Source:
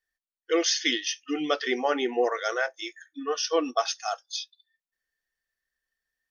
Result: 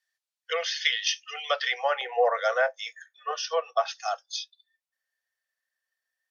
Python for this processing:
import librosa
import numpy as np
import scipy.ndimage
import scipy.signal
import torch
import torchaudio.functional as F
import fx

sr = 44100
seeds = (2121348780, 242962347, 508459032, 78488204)

y = fx.env_lowpass_down(x, sr, base_hz=2300.0, full_db=-21.0)
y = fx.peak_eq(y, sr, hz=fx.steps((0.0, 4500.0), (2.01, 510.0), (3.31, 180.0)), db=7.0, octaves=2.1)
y = scipy.signal.sosfilt(scipy.signal.butter(12, 510.0, 'highpass', fs=sr, output='sos'), y)